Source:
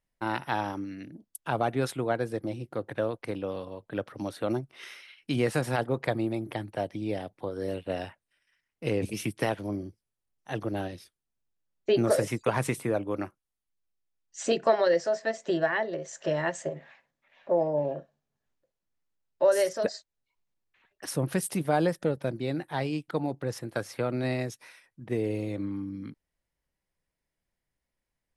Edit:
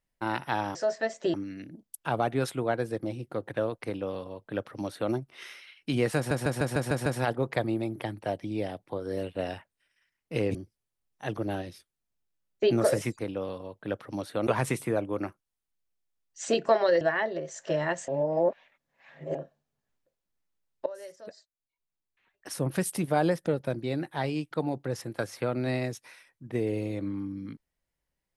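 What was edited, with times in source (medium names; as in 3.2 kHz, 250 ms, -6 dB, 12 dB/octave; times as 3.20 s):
3.26–4.54 s: copy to 12.45 s
5.57 s: stutter 0.15 s, 7 plays
9.06–9.81 s: delete
14.99–15.58 s: move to 0.75 s
16.65–17.92 s: reverse
19.43–21.33 s: fade in quadratic, from -19.5 dB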